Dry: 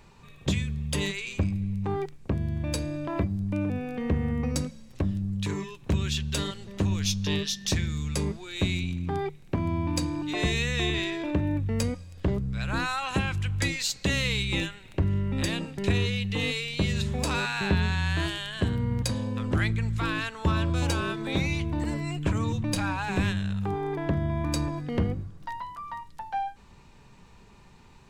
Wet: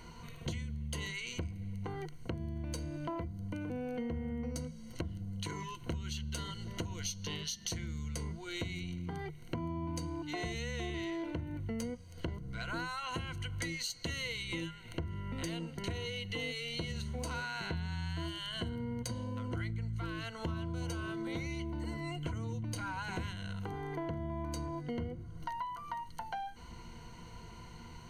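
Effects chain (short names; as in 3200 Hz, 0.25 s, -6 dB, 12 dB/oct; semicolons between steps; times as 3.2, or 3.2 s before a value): ripple EQ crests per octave 1.9, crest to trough 15 dB; compressor 5:1, threshold -39 dBFS, peak gain reduction 20 dB; gain +1.5 dB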